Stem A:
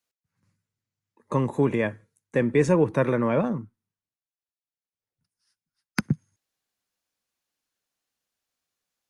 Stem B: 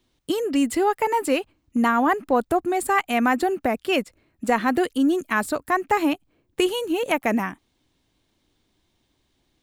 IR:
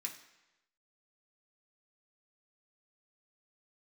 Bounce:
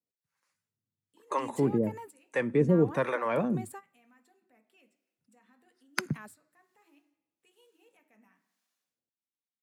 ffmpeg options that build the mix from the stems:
-filter_complex "[0:a]asoftclip=type=tanh:threshold=-9dB,acrossover=split=520[link_01][link_02];[link_01]aeval=exprs='val(0)*(1-1/2+1/2*cos(2*PI*1.1*n/s))':channel_layout=same[link_03];[link_02]aeval=exprs='val(0)*(1-1/2-1/2*cos(2*PI*1.1*n/s))':channel_layout=same[link_04];[link_03][link_04]amix=inputs=2:normalize=0,volume=1dB,asplit=3[link_05][link_06][link_07];[link_06]volume=-20.5dB[link_08];[1:a]alimiter=limit=-19.5dB:level=0:latency=1:release=102,adelay=850,volume=-16dB,asplit=2[link_09][link_10];[link_10]volume=-19.5dB[link_11];[link_07]apad=whole_len=462020[link_12];[link_09][link_12]sidechaingate=range=-25dB:threshold=-53dB:ratio=16:detection=peak[link_13];[2:a]atrim=start_sample=2205[link_14];[link_08][link_11]amix=inputs=2:normalize=0[link_15];[link_15][link_14]afir=irnorm=-1:irlink=0[link_16];[link_05][link_13][link_16]amix=inputs=3:normalize=0,highpass=110"

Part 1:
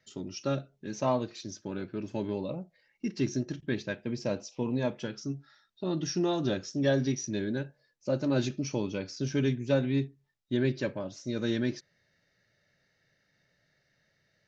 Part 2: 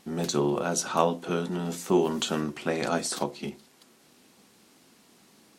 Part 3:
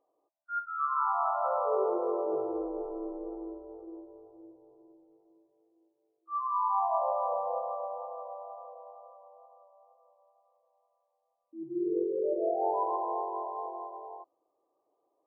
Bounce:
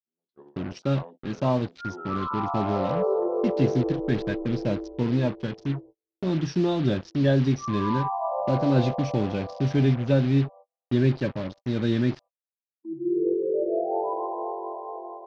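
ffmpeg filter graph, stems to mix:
ffmpeg -i stem1.wav -i stem2.wav -i stem3.wav -filter_complex "[0:a]lowshelf=frequency=210:gain=12,acrusher=bits=5:mix=0:aa=0.5,adelay=400,volume=1dB[link_01];[1:a]highpass=240,afwtdn=0.0178,volume=-19dB[link_02];[2:a]tiltshelf=frequency=760:gain=8.5,adelay=1300,volume=1dB[link_03];[link_01][link_02][link_03]amix=inputs=3:normalize=0,agate=range=-41dB:threshold=-43dB:ratio=16:detection=peak,lowpass=frequency=4700:width=0.5412,lowpass=frequency=4700:width=1.3066" out.wav

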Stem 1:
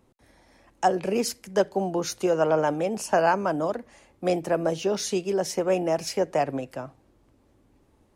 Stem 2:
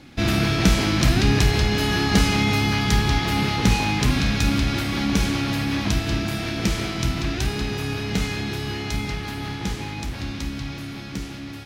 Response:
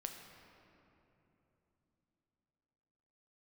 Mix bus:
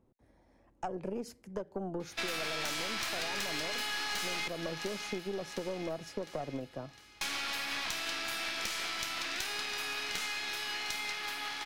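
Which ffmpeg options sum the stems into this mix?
-filter_complex "[0:a]tiltshelf=frequency=1300:gain=6.5,acompressor=threshold=-19dB:ratio=6,volume=-9.5dB[link_01];[1:a]highpass=970,adelay=2000,volume=0.5dB,asplit=3[link_02][link_03][link_04];[link_02]atrim=end=4.48,asetpts=PTS-STARTPTS,afade=type=out:start_time=4.476:duration=0.004:curve=hsin[link_05];[link_03]atrim=start=4.48:end=7.21,asetpts=PTS-STARTPTS,volume=0[link_06];[link_04]atrim=start=7.21,asetpts=PTS-STARTPTS,afade=type=in:duration=0.004:curve=hsin[link_07];[link_05][link_06][link_07]concat=n=3:v=0:a=1,asplit=2[link_08][link_09];[link_09]volume=-14.5dB,aecho=0:1:706|1412|2118|2824|3530|4236|4942:1|0.51|0.26|0.133|0.0677|0.0345|0.0176[link_10];[link_01][link_08][link_10]amix=inputs=3:normalize=0,aeval=exprs='(tanh(14.1*val(0)+0.55)-tanh(0.55))/14.1':channel_layout=same,acompressor=threshold=-32dB:ratio=6"

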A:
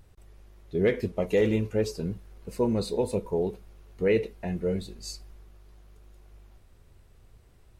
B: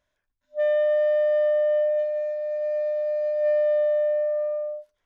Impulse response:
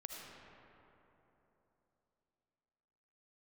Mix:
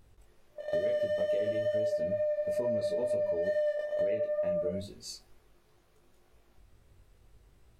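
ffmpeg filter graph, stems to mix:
-filter_complex "[0:a]acompressor=threshold=-28dB:ratio=2,volume=-0.5dB,asplit=2[link_01][link_02];[1:a]volume=20dB,asoftclip=hard,volume=-20dB,volume=3dB[link_03];[link_02]apad=whole_len=222766[link_04];[link_03][link_04]sidechaingate=range=-33dB:threshold=-49dB:ratio=16:detection=peak[link_05];[link_01][link_05]amix=inputs=2:normalize=0,bandreject=frequency=50:width_type=h:width=6,bandreject=frequency=100:width_type=h:width=6,bandreject=frequency=150:width_type=h:width=6,bandreject=frequency=200:width_type=h:width=6,flanger=delay=18:depth=3.2:speed=2.2,acompressor=threshold=-28dB:ratio=6"

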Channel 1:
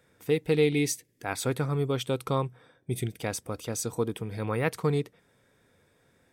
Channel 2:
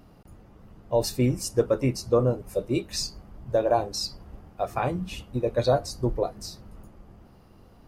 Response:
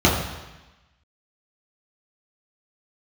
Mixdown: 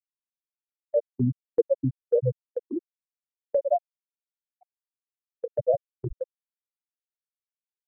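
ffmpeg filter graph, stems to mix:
-filter_complex "[0:a]volume=-8dB,asplit=2[link_01][link_02];[link_02]volume=-10.5dB[link_03];[1:a]adynamicsmooth=sensitivity=5.5:basefreq=1500,volume=1dB[link_04];[link_03]aecho=0:1:106:1[link_05];[link_01][link_04][link_05]amix=inputs=3:normalize=0,afftfilt=real='re*gte(hypot(re,im),0.708)':imag='im*gte(hypot(re,im),0.708)':win_size=1024:overlap=0.75,agate=range=-21dB:threshold=-37dB:ratio=16:detection=peak"

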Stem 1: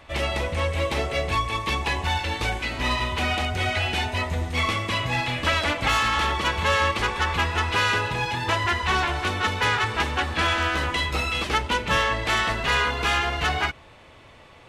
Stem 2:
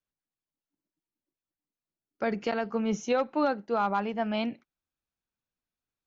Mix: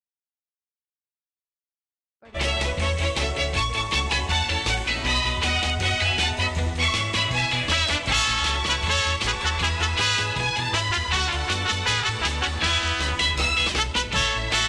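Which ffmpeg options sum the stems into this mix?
ffmpeg -i stem1.wav -i stem2.wav -filter_complex "[0:a]lowpass=frequency=8900:width=0.5412,lowpass=frequency=8900:width=1.3066,acrossover=split=170|3000[link_01][link_02][link_03];[link_02]acompressor=threshold=-28dB:ratio=6[link_04];[link_01][link_04][link_03]amix=inputs=3:normalize=0,adelay=2250,volume=2dB[link_05];[1:a]alimiter=limit=-24dB:level=0:latency=1:release=328,acompressor=threshold=-40dB:ratio=10,volume=-1.5dB[link_06];[link_05][link_06]amix=inputs=2:normalize=0,agate=range=-34dB:threshold=-42dB:ratio=16:detection=peak,adynamicequalizer=threshold=0.0178:dfrequency=2400:dqfactor=0.7:tfrequency=2400:tqfactor=0.7:attack=5:release=100:ratio=0.375:range=3:mode=boostabove:tftype=highshelf" out.wav

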